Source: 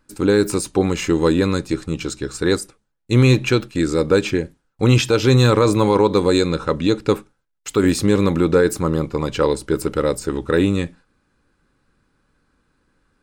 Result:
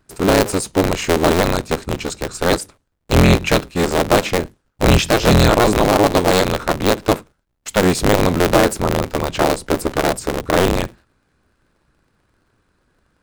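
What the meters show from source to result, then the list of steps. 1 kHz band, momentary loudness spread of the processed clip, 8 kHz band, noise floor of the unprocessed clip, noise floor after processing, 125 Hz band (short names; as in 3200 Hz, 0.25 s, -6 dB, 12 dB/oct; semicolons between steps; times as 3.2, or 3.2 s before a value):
+7.0 dB, 9 LU, +5.0 dB, -70 dBFS, -68 dBFS, -0.5 dB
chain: cycle switcher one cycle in 3, inverted; gain +1.5 dB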